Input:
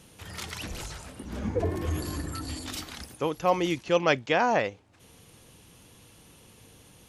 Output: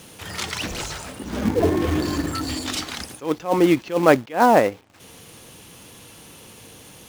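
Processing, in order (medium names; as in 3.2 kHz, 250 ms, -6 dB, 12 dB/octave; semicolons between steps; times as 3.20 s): low-pass that closes with the level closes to 1.4 kHz, closed at -20.5 dBFS; dynamic bell 280 Hz, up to +5 dB, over -40 dBFS, Q 1.8; in parallel at -4 dB: companded quantiser 4-bit; on the sum: bass shelf 110 Hz -10 dB; attacks held to a fixed rise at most 210 dB/s; trim +6 dB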